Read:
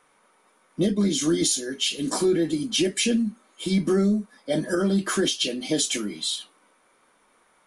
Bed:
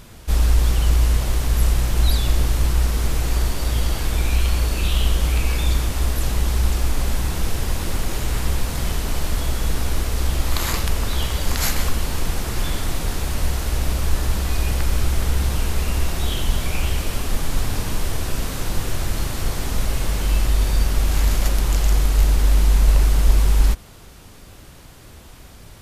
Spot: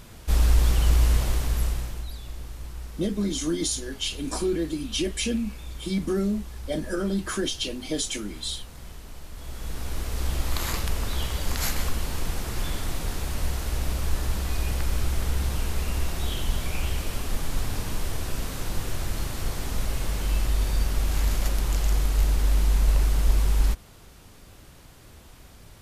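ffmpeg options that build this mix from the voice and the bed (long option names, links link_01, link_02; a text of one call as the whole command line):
ffmpeg -i stem1.wav -i stem2.wav -filter_complex "[0:a]adelay=2200,volume=-4.5dB[link_01];[1:a]volume=10dB,afade=type=out:start_time=1.2:duration=0.86:silence=0.158489,afade=type=in:start_time=9.33:duration=0.99:silence=0.223872[link_02];[link_01][link_02]amix=inputs=2:normalize=0" out.wav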